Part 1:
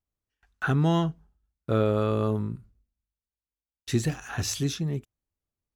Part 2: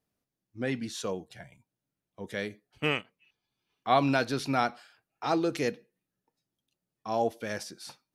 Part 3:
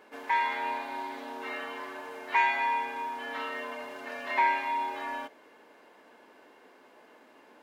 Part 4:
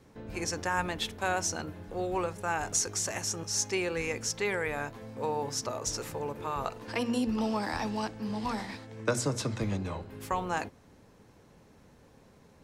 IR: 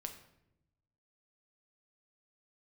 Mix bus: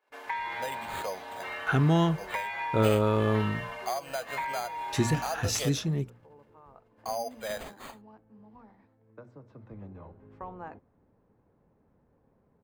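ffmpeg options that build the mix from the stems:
-filter_complex "[0:a]bandreject=f=59.16:t=h:w=4,bandreject=f=118.32:t=h:w=4,bandreject=f=177.48:t=h:w=4,bandreject=f=236.64:t=h:w=4,adelay=1050,volume=1[s0];[1:a]lowshelf=f=440:t=q:w=3:g=-11,acrusher=samples=8:mix=1:aa=0.000001,volume=1[s1];[2:a]highpass=500,volume=1[s2];[3:a]lowpass=1200,adelay=100,volume=0.355,afade=t=in:st=9.47:d=0.68:silence=0.298538[s3];[s1][s2]amix=inputs=2:normalize=0,agate=range=0.0794:threshold=0.00178:ratio=16:detection=peak,acompressor=threshold=0.0316:ratio=10,volume=1[s4];[s0][s3][s4]amix=inputs=3:normalize=0"

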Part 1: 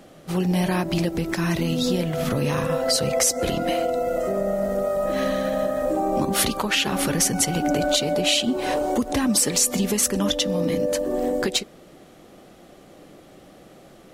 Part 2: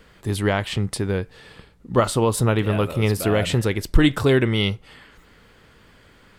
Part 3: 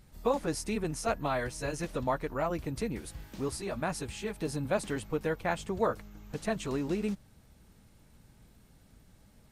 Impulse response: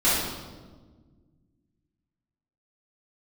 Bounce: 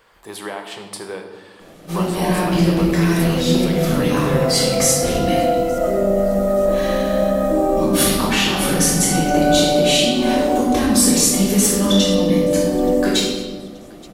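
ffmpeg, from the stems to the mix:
-filter_complex "[0:a]adelay=1600,volume=0.422,asplit=3[s0][s1][s2];[s1]volume=0.562[s3];[s2]volume=0.15[s4];[1:a]highpass=390,equalizer=f=910:w=1.8:g=8.5,acompressor=threshold=0.0794:ratio=6,volume=0.562,asplit=3[s5][s6][s7];[s6]volume=0.119[s8];[2:a]volume=0.299[s9];[s7]apad=whole_len=419425[s10];[s9][s10]sidechaincompress=threshold=0.00224:ratio=8:attack=16:release=664[s11];[3:a]atrim=start_sample=2205[s12];[s3][s8]amix=inputs=2:normalize=0[s13];[s13][s12]afir=irnorm=-1:irlink=0[s14];[s4]aecho=0:1:879|1758|2637|3516|4395|5274:1|0.42|0.176|0.0741|0.0311|0.0131[s15];[s0][s5][s11][s14][s15]amix=inputs=5:normalize=0,highshelf=f=7900:g=4.5"

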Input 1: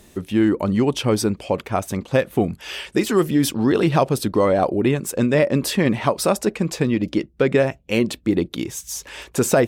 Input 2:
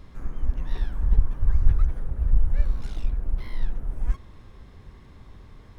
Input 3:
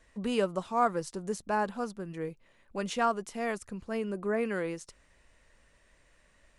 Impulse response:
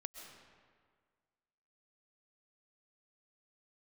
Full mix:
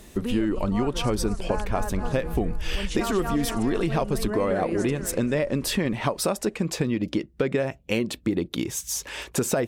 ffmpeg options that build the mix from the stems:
-filter_complex "[0:a]volume=1.12[s0];[1:a]adelay=150,volume=0.841,asplit=2[s1][s2];[s2]volume=0.224[s3];[2:a]dynaudnorm=f=150:g=13:m=3.98,volume=1.19,asplit=2[s4][s5];[s5]volume=0.282[s6];[s1][s4]amix=inputs=2:normalize=0,lowshelf=f=150:g=8.5,acompressor=threshold=0.0891:ratio=6,volume=1[s7];[s3][s6]amix=inputs=2:normalize=0,aecho=0:1:240|480|720|960|1200|1440:1|0.44|0.194|0.0852|0.0375|0.0165[s8];[s0][s7][s8]amix=inputs=3:normalize=0,acompressor=threshold=0.0794:ratio=4"

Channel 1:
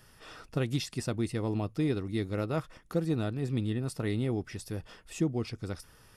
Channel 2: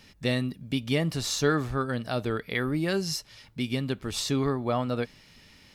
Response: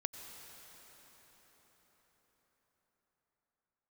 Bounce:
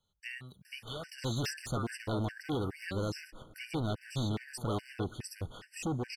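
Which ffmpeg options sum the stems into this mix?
-filter_complex "[0:a]asoftclip=type=hard:threshold=0.0211,adelay=650,volume=1.26,asplit=2[s0][s1];[s1]volume=0.188[s2];[1:a]agate=range=0.126:threshold=0.00708:ratio=16:detection=peak,equalizer=f=270:w=2.1:g=-14,acrossover=split=580|3500[s3][s4][s5];[s3]acompressor=threshold=0.00794:ratio=4[s6];[s4]acompressor=threshold=0.0224:ratio=4[s7];[s5]acompressor=threshold=0.00562:ratio=4[s8];[s6][s7][s8]amix=inputs=3:normalize=0,volume=0.596[s9];[2:a]atrim=start_sample=2205[s10];[s2][s10]afir=irnorm=-1:irlink=0[s11];[s0][s9][s11]amix=inputs=3:normalize=0,afftfilt=real='re*gt(sin(2*PI*2.4*pts/sr)*(1-2*mod(floor(b*sr/1024/1500),2)),0)':imag='im*gt(sin(2*PI*2.4*pts/sr)*(1-2*mod(floor(b*sr/1024/1500),2)),0)':win_size=1024:overlap=0.75"

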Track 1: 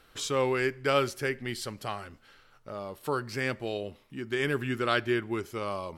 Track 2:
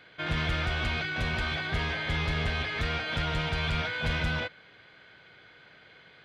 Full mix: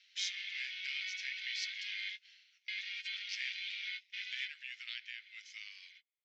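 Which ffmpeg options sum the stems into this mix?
-filter_complex "[0:a]acompressor=threshold=0.0251:ratio=5,volume=1.26,asplit=2[s0][s1];[1:a]alimiter=level_in=1.41:limit=0.0631:level=0:latency=1:release=19,volume=0.708,volume=0.944[s2];[s1]apad=whole_len=275321[s3];[s2][s3]sidechaingate=range=0.01:threshold=0.00562:ratio=16:detection=peak[s4];[s0][s4]amix=inputs=2:normalize=0,asuperpass=centerf=3600:order=12:qfactor=0.81,tremolo=f=190:d=0.4"

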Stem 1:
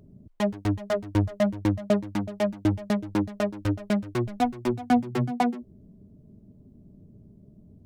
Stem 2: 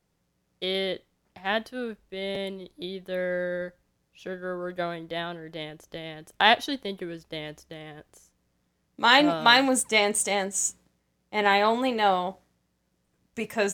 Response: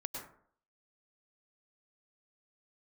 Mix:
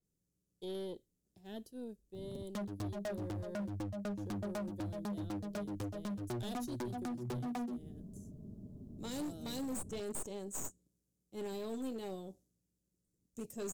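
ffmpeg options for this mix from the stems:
-filter_complex "[0:a]acompressor=threshold=0.0398:ratio=6,adelay=2150,volume=1.19[s0];[1:a]firequalizer=gain_entry='entry(370,0);entry(870,-21);entry(7000,4)':delay=0.05:min_phase=1,aeval=exprs='0.596*(cos(1*acos(clip(val(0)/0.596,-1,1)))-cos(1*PI/2))+0.0422*(cos(4*acos(clip(val(0)/0.596,-1,1)))-cos(4*PI/2))+0.0531*(cos(7*acos(clip(val(0)/0.596,-1,1)))-cos(7*PI/2))+0.0168*(cos(8*acos(clip(val(0)/0.596,-1,1)))-cos(8*PI/2))':c=same,adynamicequalizer=threshold=0.00562:dfrequency=6600:dqfactor=0.7:tfrequency=6600:tqfactor=0.7:attack=5:release=100:ratio=0.375:range=2:mode=boostabove:tftype=highshelf,volume=0.794[s1];[s0][s1]amix=inputs=2:normalize=0,equalizer=f=2100:w=2.6:g=-9,acrossover=split=730|4400[s2][s3][s4];[s2]acompressor=threshold=0.0224:ratio=4[s5];[s3]acompressor=threshold=0.00316:ratio=4[s6];[s4]acompressor=threshold=0.00794:ratio=4[s7];[s5][s6][s7]amix=inputs=3:normalize=0,asoftclip=type=hard:threshold=0.0158"

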